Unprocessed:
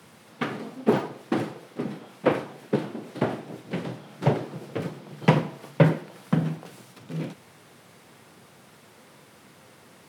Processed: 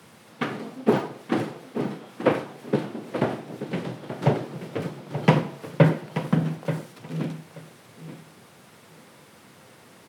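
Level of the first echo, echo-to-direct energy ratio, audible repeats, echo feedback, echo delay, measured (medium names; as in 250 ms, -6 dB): -11.0 dB, -11.0 dB, 2, 16%, 881 ms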